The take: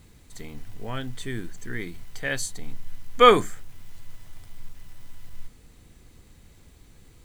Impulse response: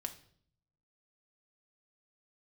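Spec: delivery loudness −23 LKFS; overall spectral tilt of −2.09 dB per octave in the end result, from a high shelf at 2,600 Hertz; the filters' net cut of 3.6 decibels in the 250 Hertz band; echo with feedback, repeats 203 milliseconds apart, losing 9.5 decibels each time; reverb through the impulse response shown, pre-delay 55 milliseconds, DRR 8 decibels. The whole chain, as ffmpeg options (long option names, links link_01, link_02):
-filter_complex "[0:a]equalizer=frequency=250:width_type=o:gain=-5,highshelf=frequency=2600:gain=8.5,aecho=1:1:203|406|609|812:0.335|0.111|0.0365|0.012,asplit=2[link_01][link_02];[1:a]atrim=start_sample=2205,adelay=55[link_03];[link_02][link_03]afir=irnorm=-1:irlink=0,volume=-6.5dB[link_04];[link_01][link_04]amix=inputs=2:normalize=0,volume=-1.5dB"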